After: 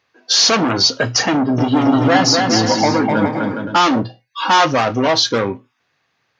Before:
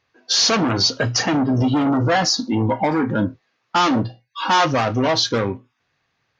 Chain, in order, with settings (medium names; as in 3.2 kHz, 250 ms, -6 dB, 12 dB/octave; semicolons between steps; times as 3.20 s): high-pass 190 Hz 6 dB/octave; 1.33–3.77 s: bouncing-ball echo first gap 250 ms, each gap 0.65×, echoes 5; trim +4 dB